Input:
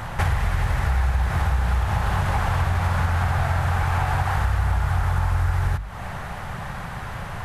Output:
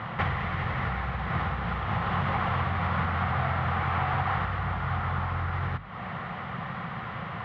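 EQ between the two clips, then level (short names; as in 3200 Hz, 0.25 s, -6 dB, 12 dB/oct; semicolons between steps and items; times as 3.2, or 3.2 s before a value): speaker cabinet 200–2800 Hz, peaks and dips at 280 Hz -6 dB, 400 Hz -8 dB, 610 Hz -9 dB, 880 Hz -10 dB, 1600 Hz -10 dB, 2500 Hz -7 dB; +5.0 dB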